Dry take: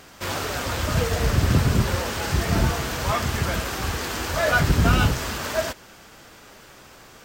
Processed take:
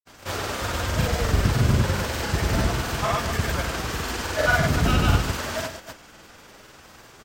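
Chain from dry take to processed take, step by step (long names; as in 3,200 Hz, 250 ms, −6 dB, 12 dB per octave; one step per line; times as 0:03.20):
single-tap delay 171 ms −7.5 dB
granular cloud, pitch spread up and down by 0 semitones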